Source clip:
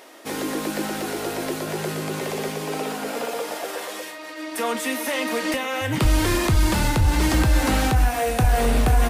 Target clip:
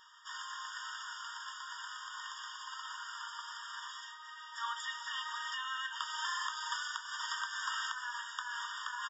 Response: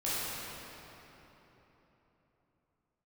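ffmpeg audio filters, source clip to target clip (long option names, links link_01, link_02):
-af "aresample=16000,aresample=44100,afftfilt=real='re*eq(mod(floor(b*sr/1024/940),2),1)':imag='im*eq(mod(floor(b*sr/1024/940),2),1)':win_size=1024:overlap=0.75,volume=-7.5dB"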